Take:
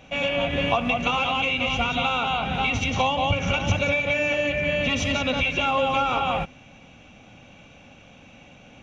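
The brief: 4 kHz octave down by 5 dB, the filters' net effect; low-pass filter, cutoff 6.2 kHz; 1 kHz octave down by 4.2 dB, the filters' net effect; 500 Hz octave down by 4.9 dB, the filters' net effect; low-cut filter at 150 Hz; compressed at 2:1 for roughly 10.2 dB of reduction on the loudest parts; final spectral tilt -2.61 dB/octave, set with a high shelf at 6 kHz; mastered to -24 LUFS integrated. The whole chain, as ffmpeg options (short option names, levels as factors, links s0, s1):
-af "highpass=150,lowpass=6200,equalizer=f=500:t=o:g=-4.5,equalizer=f=1000:t=o:g=-3.5,equalizer=f=4000:t=o:g=-4.5,highshelf=f=6000:g=-8.5,acompressor=threshold=0.00794:ratio=2,volume=3.98"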